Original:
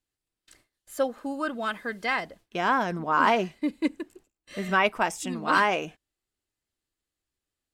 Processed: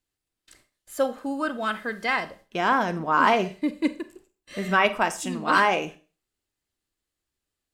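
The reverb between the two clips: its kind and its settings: Schroeder reverb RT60 0.36 s, combs from 29 ms, DRR 12 dB; trim +2 dB

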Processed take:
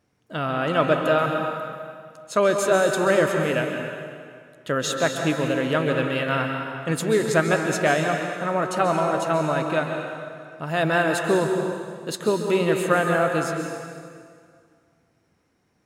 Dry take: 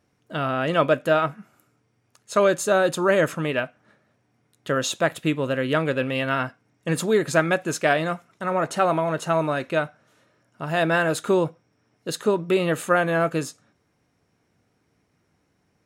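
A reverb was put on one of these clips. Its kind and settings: plate-style reverb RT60 2.1 s, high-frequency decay 0.85×, pre-delay 120 ms, DRR 3 dB; trim -1 dB

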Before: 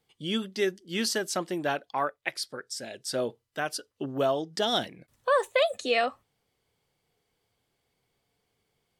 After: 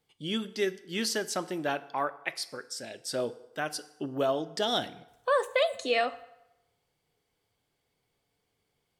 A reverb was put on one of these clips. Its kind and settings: FDN reverb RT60 0.93 s, low-frequency decay 0.7×, high-frequency decay 0.75×, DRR 13 dB; trim -2 dB

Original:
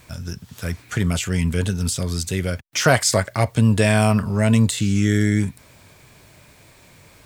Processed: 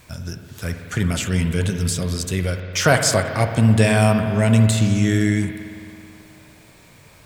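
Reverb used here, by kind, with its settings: spring tank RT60 2.7 s, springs 54 ms, chirp 75 ms, DRR 6 dB

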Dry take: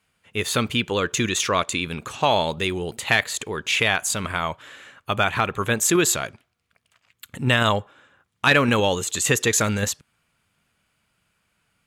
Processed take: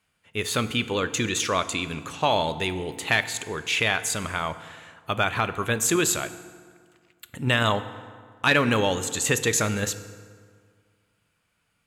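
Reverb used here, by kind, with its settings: FDN reverb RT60 1.9 s, low-frequency decay 1.05×, high-frequency decay 0.65×, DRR 11.5 dB; trim -3 dB

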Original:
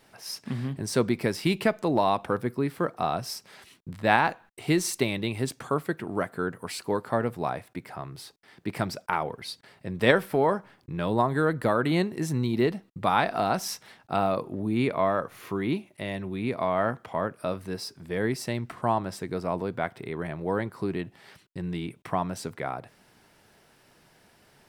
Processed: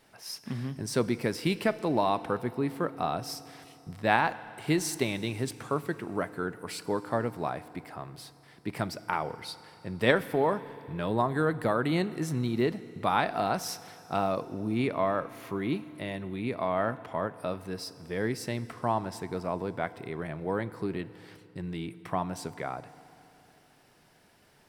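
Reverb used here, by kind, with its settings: FDN reverb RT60 3.2 s, high-frequency decay 0.95×, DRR 15 dB; trim -3 dB

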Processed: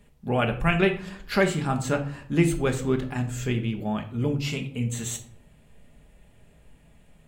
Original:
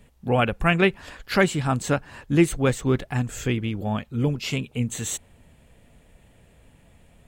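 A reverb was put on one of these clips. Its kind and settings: simulated room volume 600 m³, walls furnished, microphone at 1.3 m; trim -4 dB

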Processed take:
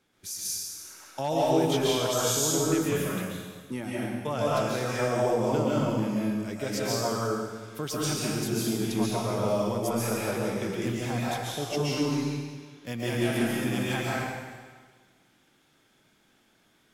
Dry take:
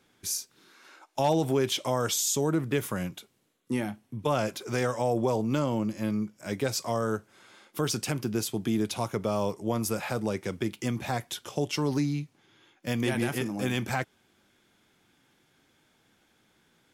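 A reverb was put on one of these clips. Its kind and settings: algorithmic reverb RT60 1.5 s, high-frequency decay 1×, pre-delay 100 ms, DRR -6.5 dB; trim -5.5 dB

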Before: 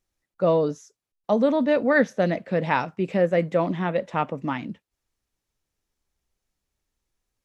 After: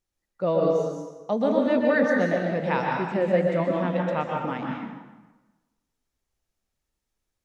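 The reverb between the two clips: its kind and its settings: plate-style reverb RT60 1.2 s, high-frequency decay 0.75×, pre-delay 110 ms, DRR -0.5 dB; trim -4.5 dB

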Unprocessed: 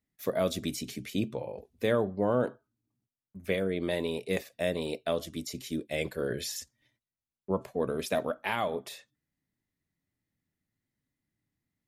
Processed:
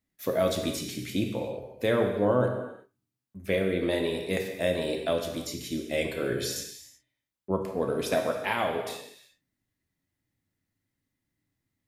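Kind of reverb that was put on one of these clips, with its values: gated-style reverb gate 400 ms falling, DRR 2.5 dB; trim +1.5 dB

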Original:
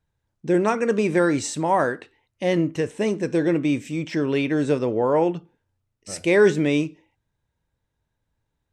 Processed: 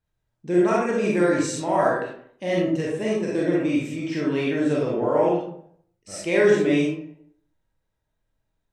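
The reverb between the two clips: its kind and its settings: algorithmic reverb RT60 0.65 s, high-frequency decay 0.55×, pre-delay 5 ms, DRR -5 dB; trim -6.5 dB

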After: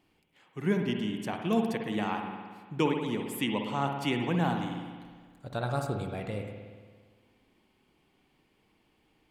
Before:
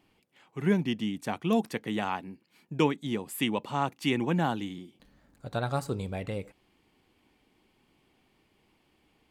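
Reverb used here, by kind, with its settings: spring tank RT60 1.6 s, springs 57 ms, chirp 50 ms, DRR 3.5 dB; trim -2.5 dB

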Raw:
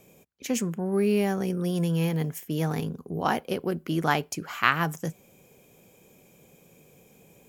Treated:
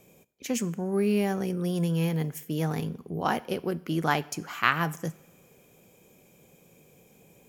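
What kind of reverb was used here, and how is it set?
two-slope reverb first 0.78 s, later 3 s, from -25 dB, DRR 17.5 dB; trim -1.5 dB

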